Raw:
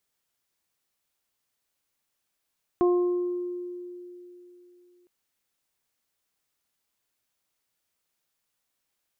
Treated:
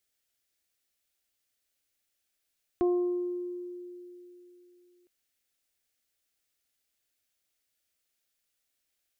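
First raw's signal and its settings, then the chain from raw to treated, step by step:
additive tone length 2.26 s, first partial 355 Hz, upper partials -11/-12.5 dB, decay 3.26 s, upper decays 0.83/1.21 s, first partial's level -17.5 dB
fifteen-band EQ 160 Hz -12 dB, 400 Hz -3 dB, 1000 Hz -12 dB

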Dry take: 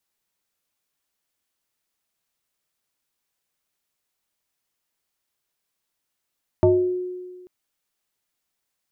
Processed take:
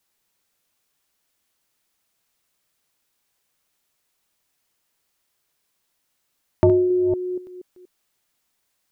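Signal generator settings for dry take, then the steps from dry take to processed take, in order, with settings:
FM tone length 0.84 s, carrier 363 Hz, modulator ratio 0.73, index 1.3, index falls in 0.55 s exponential, decay 1.58 s, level -11 dB
reverse delay 0.238 s, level -9 dB; in parallel at +0.5 dB: compressor, threshold -28 dBFS

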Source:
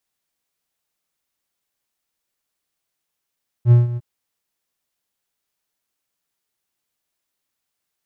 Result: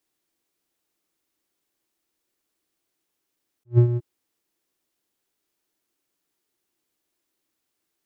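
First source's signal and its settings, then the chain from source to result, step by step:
ADSR triangle 120 Hz, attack 63 ms, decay 0.159 s, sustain -15.5 dB, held 0.32 s, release 35 ms -4 dBFS
bell 330 Hz +12.5 dB 0.73 oct; attack slew limiter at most 470 dB/s

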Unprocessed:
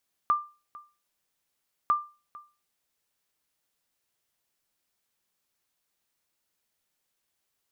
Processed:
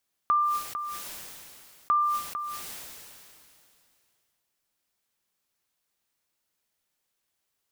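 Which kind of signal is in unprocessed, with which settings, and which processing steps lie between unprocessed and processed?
sonar ping 1190 Hz, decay 0.32 s, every 1.60 s, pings 2, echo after 0.45 s, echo -21.5 dB -16 dBFS
sustainer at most 23 dB/s

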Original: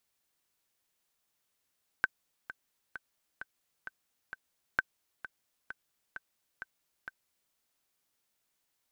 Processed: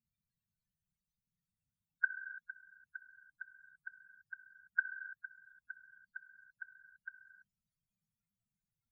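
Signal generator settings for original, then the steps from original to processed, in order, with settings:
metronome 131 bpm, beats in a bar 6, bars 2, 1540 Hz, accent 15 dB -12.5 dBFS
resonant low shelf 240 Hz +7 dB, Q 1.5; loudest bins only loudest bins 8; non-linear reverb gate 0.35 s flat, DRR 7 dB

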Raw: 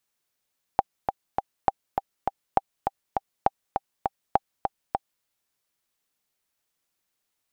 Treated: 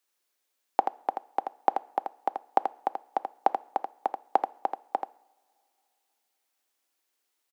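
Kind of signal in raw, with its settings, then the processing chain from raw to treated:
metronome 202 bpm, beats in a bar 3, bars 5, 789 Hz, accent 5.5 dB -5 dBFS
steep high-pass 260 Hz 36 dB/oct; on a send: echo 83 ms -6.5 dB; on the sum: two-slope reverb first 0.65 s, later 3.3 s, from -22 dB, DRR 19 dB

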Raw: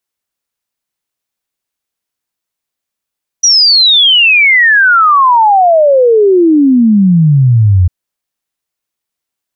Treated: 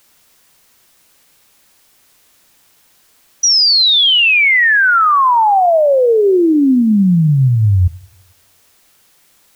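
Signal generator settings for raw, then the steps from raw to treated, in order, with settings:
log sweep 5900 Hz -> 86 Hz 4.45 s -3.5 dBFS
limiter -7.5 dBFS; added noise white -53 dBFS; plate-style reverb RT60 1 s, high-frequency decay 0.85×, DRR 18.5 dB

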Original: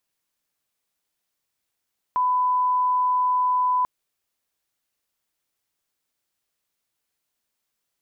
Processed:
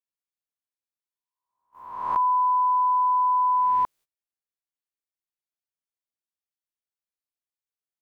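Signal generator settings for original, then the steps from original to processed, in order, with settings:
line-up tone -18 dBFS 1.69 s
spectral swells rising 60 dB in 0.93 s; gate -48 dBFS, range -22 dB

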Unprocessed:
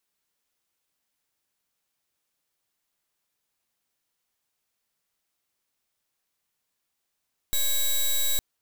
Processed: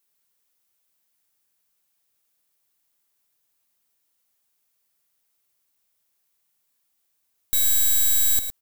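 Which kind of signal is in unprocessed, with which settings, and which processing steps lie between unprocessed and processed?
pulse 3860 Hz, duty 11% -23 dBFS 0.86 s
high shelf 9000 Hz +10.5 dB; on a send: echo 0.111 s -9.5 dB

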